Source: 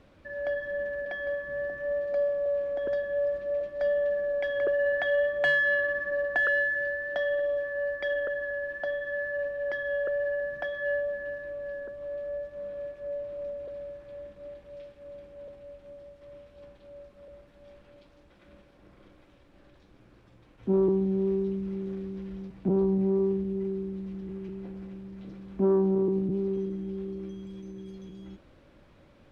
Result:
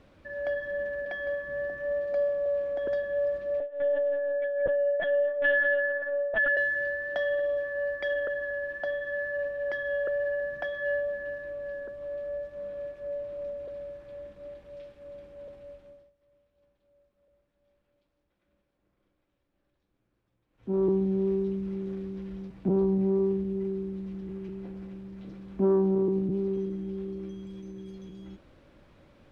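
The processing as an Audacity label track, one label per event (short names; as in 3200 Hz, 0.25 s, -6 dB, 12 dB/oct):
3.600000	6.570000	LPC vocoder at 8 kHz pitch kept
15.710000	20.910000	dip -19.5 dB, fades 0.41 s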